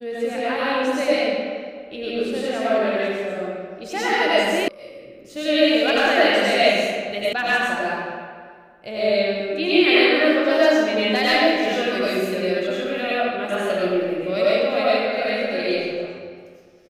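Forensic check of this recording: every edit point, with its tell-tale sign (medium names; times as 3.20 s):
4.68 s: sound stops dead
7.33 s: sound stops dead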